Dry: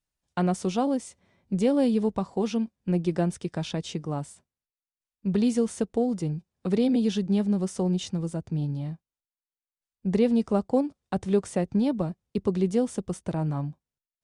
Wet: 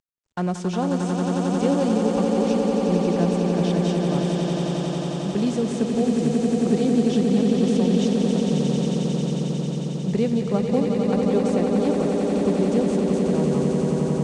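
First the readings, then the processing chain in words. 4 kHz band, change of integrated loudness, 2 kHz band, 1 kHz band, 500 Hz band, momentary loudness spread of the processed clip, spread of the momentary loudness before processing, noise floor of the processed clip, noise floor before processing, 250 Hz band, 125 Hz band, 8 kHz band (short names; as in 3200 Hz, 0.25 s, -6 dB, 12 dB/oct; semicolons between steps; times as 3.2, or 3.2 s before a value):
+7.0 dB, +5.5 dB, +7.0 dB, +6.0 dB, +6.5 dB, 5 LU, 10 LU, -28 dBFS, under -85 dBFS, +6.0 dB, +6.5 dB, +5.5 dB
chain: CVSD 64 kbps; LPF 8200 Hz 24 dB/oct; swelling echo 90 ms, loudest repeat 8, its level -6 dB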